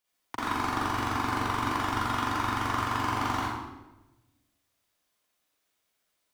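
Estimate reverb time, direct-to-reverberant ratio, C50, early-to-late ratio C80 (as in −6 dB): 1.0 s, −8.0 dB, −4.5 dB, 0.5 dB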